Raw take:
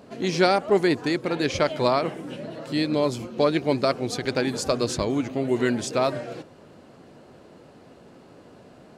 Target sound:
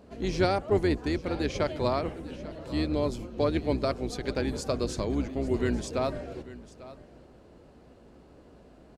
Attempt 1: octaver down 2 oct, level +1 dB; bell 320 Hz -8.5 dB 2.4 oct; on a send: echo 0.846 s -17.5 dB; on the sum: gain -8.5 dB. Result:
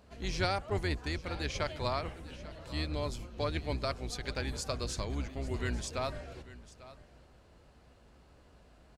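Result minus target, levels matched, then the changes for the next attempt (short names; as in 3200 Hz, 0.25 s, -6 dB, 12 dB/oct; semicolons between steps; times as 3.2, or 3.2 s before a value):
250 Hz band -4.5 dB
change: bell 320 Hz +3.5 dB 2.4 oct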